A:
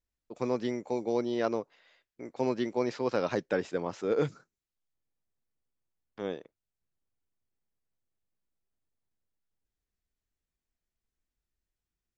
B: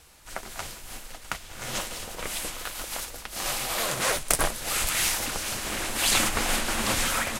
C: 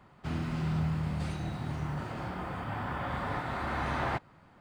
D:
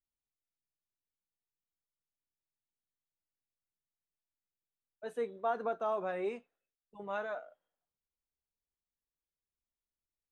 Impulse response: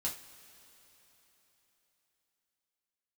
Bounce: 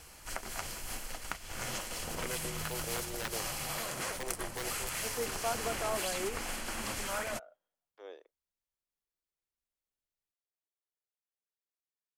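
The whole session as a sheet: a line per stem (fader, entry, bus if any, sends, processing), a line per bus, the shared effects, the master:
−9.5 dB, 1.80 s, no send, inverse Chebyshev high-pass filter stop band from 190 Hz, stop band 40 dB; wrap-around overflow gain 23.5 dB; automatic ducking −12 dB, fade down 0.30 s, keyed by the fourth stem
+1.5 dB, 0.00 s, no send, notch filter 3,700 Hz, Q 7.9; downward compressor 12 to 1, threshold −36 dBFS, peak gain reduction 19.5 dB
−14.5 dB, 1.80 s, no send, no processing
−2.0 dB, 0.00 s, no send, no processing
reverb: not used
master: no processing

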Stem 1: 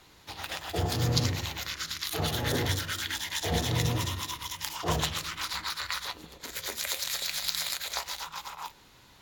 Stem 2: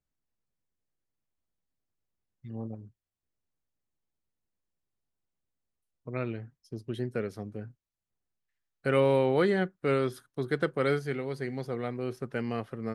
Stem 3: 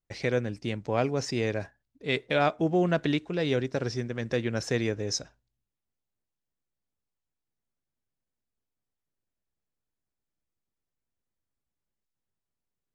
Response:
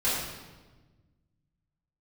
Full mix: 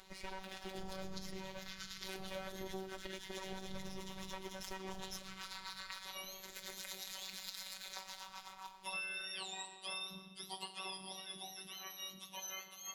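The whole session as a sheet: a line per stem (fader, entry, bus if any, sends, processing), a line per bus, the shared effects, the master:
−11.0 dB, 0.00 s, send −16 dB, sub-octave generator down 2 octaves, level −3 dB; parametric band 16,000 Hz −10 dB 0.31 octaves; upward compression, threshold −43 dBFS
−8.5 dB, 0.00 s, send −17.5 dB, frequency axis turned over on the octave scale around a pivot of 1,200 Hz
−6.0 dB, 0.00 s, no send, lower of the sound and its delayed copy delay 3.2 ms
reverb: on, RT60 1.3 s, pre-delay 3 ms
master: phases set to zero 190 Hz; downward compressor 6 to 1, threshold −40 dBFS, peak gain reduction 13.5 dB

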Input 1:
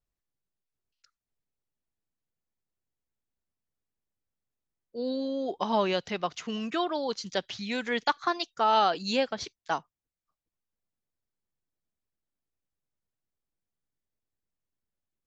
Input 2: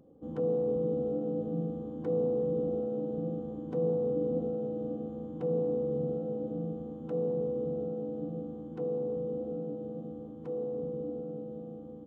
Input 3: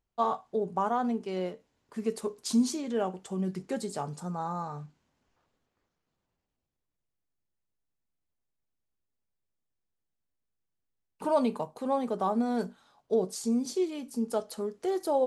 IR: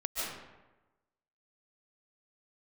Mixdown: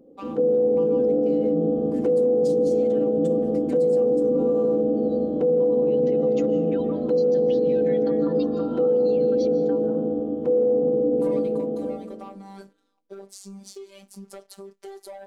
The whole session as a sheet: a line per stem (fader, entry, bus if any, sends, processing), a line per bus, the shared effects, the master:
+1.5 dB, 0.00 s, bus A, send −20.5 dB, expanding power law on the bin magnitudes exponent 1.6; downward compressor, threshold −31 dBFS, peak gain reduction 11 dB
−3.0 dB, 0.00 s, no bus, send −9.5 dB, octave-band graphic EQ 125/250/500/1,000 Hz −8/+9/+9/−3 dB; automatic gain control gain up to 10 dB
−6.5 dB, 0.00 s, bus A, no send, low-shelf EQ 320 Hz −11 dB; leveller curve on the samples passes 2
bus A: 0.0 dB, phases set to zero 196 Hz; downward compressor, threshold −37 dBFS, peak gain reduction 10 dB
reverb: on, RT60 1.1 s, pre-delay 105 ms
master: brickwall limiter −14 dBFS, peak gain reduction 9.5 dB

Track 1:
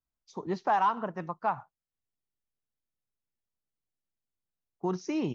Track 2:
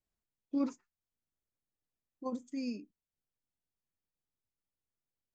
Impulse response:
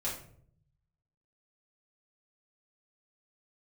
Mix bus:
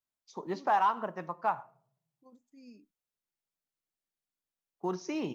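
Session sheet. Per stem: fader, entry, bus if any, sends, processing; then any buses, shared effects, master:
−1.0 dB, 0.00 s, send −17.5 dB, high-pass filter 330 Hz 6 dB per octave
0:02.48 −21 dB → 0:02.86 −10 dB, 0.00 s, no send, no processing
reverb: on, RT60 0.60 s, pre-delay 4 ms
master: floating-point word with a short mantissa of 6 bits

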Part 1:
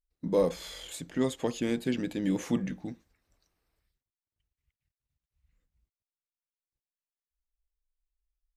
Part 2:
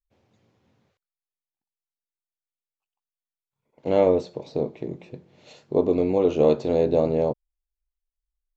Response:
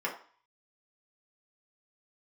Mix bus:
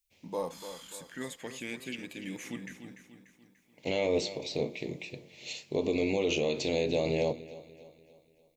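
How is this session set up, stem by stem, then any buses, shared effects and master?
−12.5 dB, 0.00 s, no send, echo send −10.5 dB, high-pass filter 55 Hz; auto-filter bell 0.25 Hz 790–2,500 Hz +14 dB
−4.5 dB, 0.00 s, no send, echo send −20 dB, high shelf with overshoot 1,800 Hz +7.5 dB, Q 3; mains-hum notches 60/120/180/240/300/360/420/480 Hz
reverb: not used
echo: repeating echo 293 ms, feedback 47%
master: high-shelf EQ 4,000 Hz +12 dB; brickwall limiter −18.5 dBFS, peak gain reduction 9.5 dB

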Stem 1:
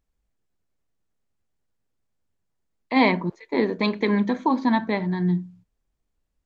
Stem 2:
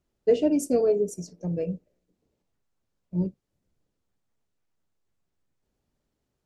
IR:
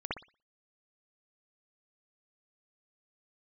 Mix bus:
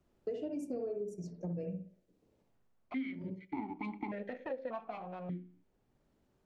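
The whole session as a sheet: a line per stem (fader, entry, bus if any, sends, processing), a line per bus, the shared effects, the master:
+2.5 dB, 0.00 s, no send, lower of the sound and its delayed copy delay 0.92 ms; formant filter that steps through the vowels 1.7 Hz
−9.0 dB, 0.00 s, send −6 dB, multiband upward and downward compressor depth 40%; automatic ducking −11 dB, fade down 0.45 s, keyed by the first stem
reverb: on, pre-delay 58 ms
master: high-shelf EQ 3,100 Hz −9 dB; downward compressor 6 to 1, threshold −36 dBFS, peak gain reduction 16 dB

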